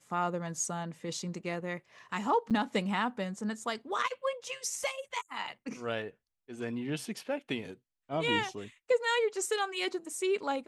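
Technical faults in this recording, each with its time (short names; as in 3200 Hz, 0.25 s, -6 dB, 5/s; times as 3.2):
2.5–2.51 gap 7.3 ms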